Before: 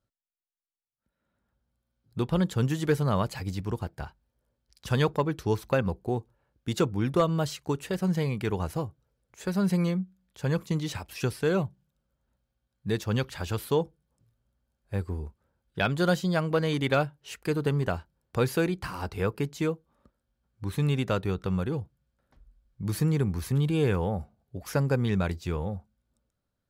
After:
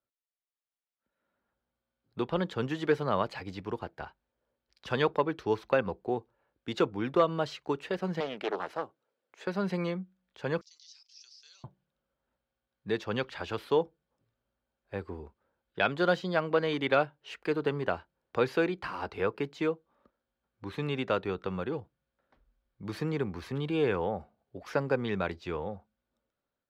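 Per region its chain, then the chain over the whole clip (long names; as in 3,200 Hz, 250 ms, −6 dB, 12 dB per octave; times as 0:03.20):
0:08.20–0:09.47: high-pass filter 260 Hz + highs frequency-modulated by the lows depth 0.47 ms
0:10.61–0:11.64: flat-topped band-pass 5,500 Hz, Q 3.6 + envelope flattener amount 50%
whole clip: three-way crossover with the lows and the highs turned down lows −14 dB, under 260 Hz, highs −22 dB, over 4,400 Hz; automatic gain control gain up to 6 dB; level −5.5 dB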